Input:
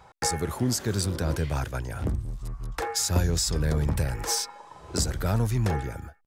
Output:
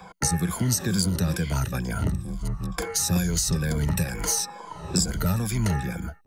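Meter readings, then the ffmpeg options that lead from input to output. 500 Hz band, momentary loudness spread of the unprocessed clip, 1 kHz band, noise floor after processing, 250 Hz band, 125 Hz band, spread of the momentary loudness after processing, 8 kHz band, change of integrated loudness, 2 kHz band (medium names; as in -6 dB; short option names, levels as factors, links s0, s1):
-2.0 dB, 9 LU, -0.5 dB, -45 dBFS, +4.5 dB, +1.5 dB, 8 LU, +4.0 dB, +2.0 dB, +2.5 dB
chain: -filter_complex "[0:a]afftfilt=real='re*pow(10,13/40*sin(2*PI*(1.8*log(max(b,1)*sr/1024/100)/log(2)-(-2.2)*(pts-256)/sr)))':imag='im*pow(10,13/40*sin(2*PI*(1.8*log(max(b,1)*sr/1024/100)/log(2)-(-2.2)*(pts-256)/sr)))':win_size=1024:overlap=0.75,equalizer=f=180:t=o:w=0.33:g=14,acrossover=split=110|290|1300|5300[s0][s1][s2][s3][s4];[s0]acompressor=threshold=0.0158:ratio=4[s5];[s1]acompressor=threshold=0.02:ratio=4[s6];[s2]acompressor=threshold=0.00708:ratio=4[s7];[s3]acompressor=threshold=0.00794:ratio=4[s8];[s4]acompressor=threshold=0.0316:ratio=4[s9];[s5][s6][s7][s8][s9]amix=inputs=5:normalize=0,volume=2"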